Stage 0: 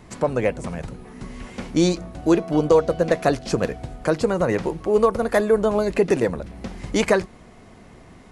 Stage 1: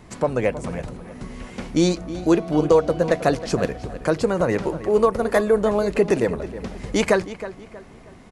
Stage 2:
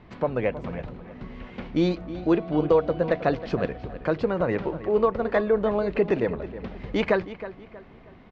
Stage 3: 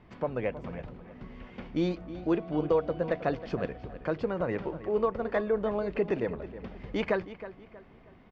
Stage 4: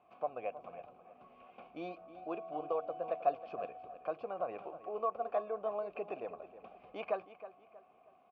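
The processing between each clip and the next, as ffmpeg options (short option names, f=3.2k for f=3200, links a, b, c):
-filter_complex "[0:a]asplit=2[a][b];[b]adelay=318,lowpass=f=3.5k:p=1,volume=-13.5dB,asplit=2[c][d];[d]adelay=318,lowpass=f=3.5k:p=1,volume=0.37,asplit=2[e][f];[f]adelay=318,lowpass=f=3.5k:p=1,volume=0.37,asplit=2[g][h];[h]adelay=318,lowpass=f=3.5k:p=1,volume=0.37[i];[a][c][e][g][i]amix=inputs=5:normalize=0"
-af "lowpass=f=3.7k:w=0.5412,lowpass=f=3.7k:w=1.3066,volume=-4dB"
-af "bandreject=f=4k:w=14,volume=-6dB"
-filter_complex "[0:a]asplit=3[a][b][c];[a]bandpass=f=730:t=q:w=8,volume=0dB[d];[b]bandpass=f=1.09k:t=q:w=8,volume=-6dB[e];[c]bandpass=f=2.44k:t=q:w=8,volume=-9dB[f];[d][e][f]amix=inputs=3:normalize=0,volume=3.5dB"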